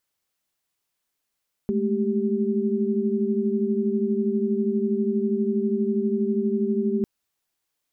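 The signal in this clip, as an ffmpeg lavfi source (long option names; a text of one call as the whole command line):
ffmpeg -f lavfi -i "aevalsrc='0.0562*(sin(2*PI*207.65*t)+sin(2*PI*220*t)+sin(2*PI*392*t))':duration=5.35:sample_rate=44100" out.wav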